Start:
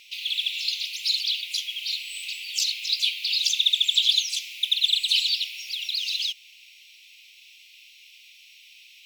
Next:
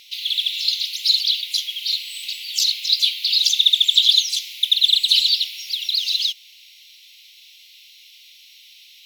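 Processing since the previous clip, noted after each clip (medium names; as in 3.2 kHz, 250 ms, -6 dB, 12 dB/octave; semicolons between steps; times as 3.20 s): graphic EQ with 31 bands 2.5 kHz -9 dB, 4 kHz +4 dB, 8 kHz -4 dB, 12.5 kHz +4 dB; trim +5 dB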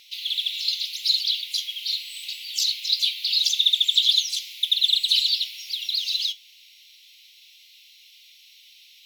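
flange 0.24 Hz, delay 4.5 ms, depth 5.6 ms, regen +72%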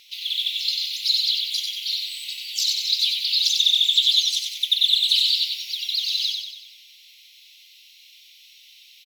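feedback delay 94 ms, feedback 52%, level -4.5 dB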